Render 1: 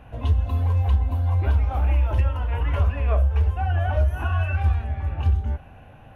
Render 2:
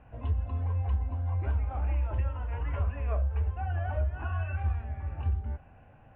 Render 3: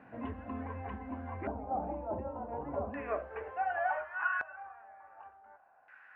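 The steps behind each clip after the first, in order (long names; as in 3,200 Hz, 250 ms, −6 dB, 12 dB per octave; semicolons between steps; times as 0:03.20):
low-pass filter 2,600 Hz 24 dB per octave; level −9 dB
high-pass filter sweep 230 Hz → 1,500 Hz, 0:02.89–0:04.41; background noise white −75 dBFS; auto-filter low-pass square 0.34 Hz 740–1,900 Hz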